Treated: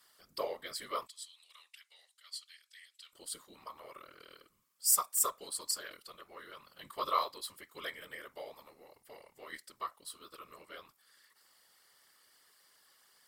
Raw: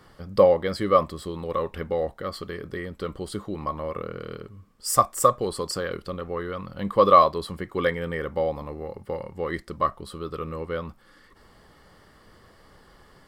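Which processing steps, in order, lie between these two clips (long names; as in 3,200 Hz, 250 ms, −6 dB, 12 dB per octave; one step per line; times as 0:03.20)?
first difference
random phases in short frames
0:01.07–0:03.13: flat-topped band-pass 5,200 Hz, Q 0.72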